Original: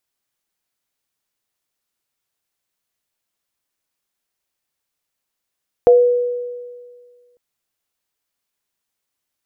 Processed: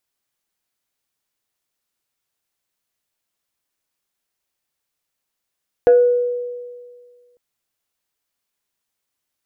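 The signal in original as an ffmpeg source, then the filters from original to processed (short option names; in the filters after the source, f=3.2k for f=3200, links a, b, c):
-f lavfi -i "aevalsrc='0.562*pow(10,-3*t/1.81)*sin(2*PI*488*t)+0.188*pow(10,-3*t/0.29)*sin(2*PI*696*t)':d=1.5:s=44100"
-af "asoftclip=type=tanh:threshold=-4.5dB"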